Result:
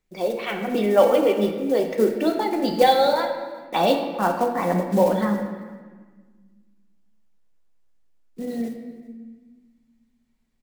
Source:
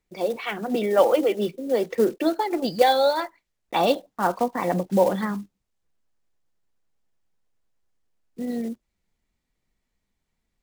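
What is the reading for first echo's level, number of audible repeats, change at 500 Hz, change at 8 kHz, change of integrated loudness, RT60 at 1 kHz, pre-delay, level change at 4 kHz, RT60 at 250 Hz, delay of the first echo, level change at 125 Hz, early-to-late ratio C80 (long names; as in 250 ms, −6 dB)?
−22.5 dB, 1, +2.0 dB, +1.0 dB, +1.5 dB, 1.4 s, 3 ms, +1.5 dB, 2.3 s, 387 ms, +3.5 dB, 7.5 dB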